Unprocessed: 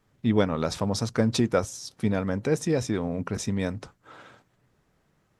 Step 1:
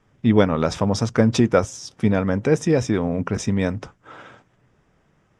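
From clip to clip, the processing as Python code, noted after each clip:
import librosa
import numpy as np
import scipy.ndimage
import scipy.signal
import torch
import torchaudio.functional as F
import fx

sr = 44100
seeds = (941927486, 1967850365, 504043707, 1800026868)

y = scipy.signal.sosfilt(scipy.signal.butter(2, 6400.0, 'lowpass', fs=sr, output='sos'), x)
y = fx.peak_eq(y, sr, hz=4200.0, db=-12.5, octaves=0.21)
y = y * librosa.db_to_amplitude(6.5)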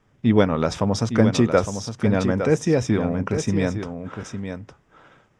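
y = x + 10.0 ** (-8.5 / 20.0) * np.pad(x, (int(860 * sr / 1000.0), 0))[:len(x)]
y = y * librosa.db_to_amplitude(-1.0)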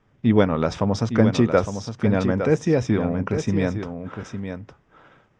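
y = fx.air_absorb(x, sr, metres=84.0)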